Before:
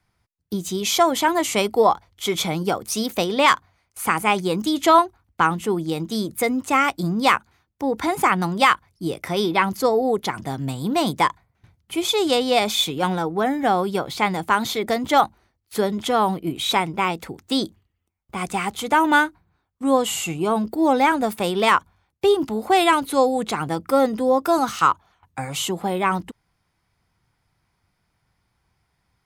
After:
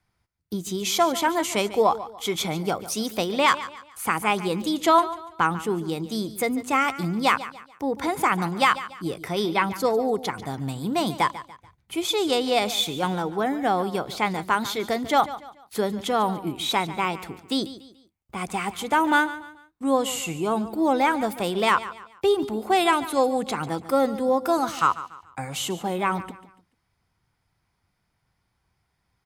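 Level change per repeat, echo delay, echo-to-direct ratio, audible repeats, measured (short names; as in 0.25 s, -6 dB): -9.0 dB, 0.144 s, -14.5 dB, 3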